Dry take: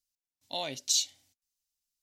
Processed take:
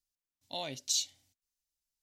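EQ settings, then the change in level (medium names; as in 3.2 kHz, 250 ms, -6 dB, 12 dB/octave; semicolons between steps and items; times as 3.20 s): bass shelf 160 Hz +8 dB; -4.0 dB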